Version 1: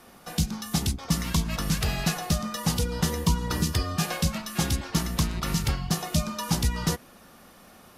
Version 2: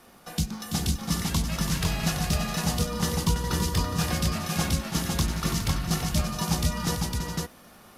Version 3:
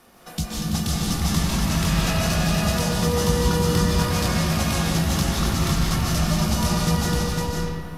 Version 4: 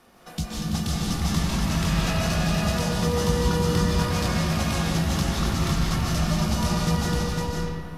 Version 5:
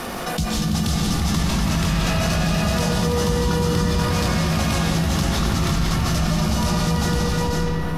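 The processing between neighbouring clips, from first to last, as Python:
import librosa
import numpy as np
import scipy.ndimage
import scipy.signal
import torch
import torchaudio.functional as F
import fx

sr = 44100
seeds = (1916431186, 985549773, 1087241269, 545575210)

y1 = fx.dmg_crackle(x, sr, seeds[0], per_s=48.0, level_db=-42.0)
y1 = fx.echo_multitap(y1, sr, ms=(333, 414, 505), db=(-8.0, -10.5, -3.0))
y1 = y1 * librosa.db_to_amplitude(-2.0)
y2 = fx.rev_freeverb(y1, sr, rt60_s=2.0, hf_ratio=0.55, predelay_ms=110, drr_db=-5.0)
y3 = fx.high_shelf(y2, sr, hz=8200.0, db=-7.0)
y3 = y3 * librosa.db_to_amplitude(-2.0)
y4 = fx.env_flatten(y3, sr, amount_pct=70)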